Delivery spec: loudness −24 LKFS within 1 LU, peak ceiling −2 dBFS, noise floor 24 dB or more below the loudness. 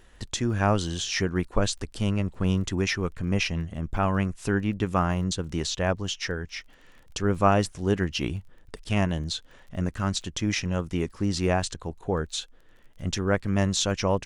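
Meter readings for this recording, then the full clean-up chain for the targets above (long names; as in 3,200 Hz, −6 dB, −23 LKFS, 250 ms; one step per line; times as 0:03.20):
crackle rate 23 per second; integrated loudness −27.5 LKFS; sample peak −7.0 dBFS; target loudness −24.0 LKFS
→ click removal
level +3.5 dB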